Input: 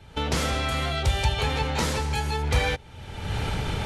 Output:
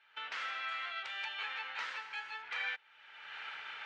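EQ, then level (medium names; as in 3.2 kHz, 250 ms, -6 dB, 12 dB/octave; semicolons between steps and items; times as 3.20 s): ladder band-pass 1.9 kHz, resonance 40%; distance through air 63 m; peaking EQ 2.8 kHz +4 dB 0.37 oct; +1.5 dB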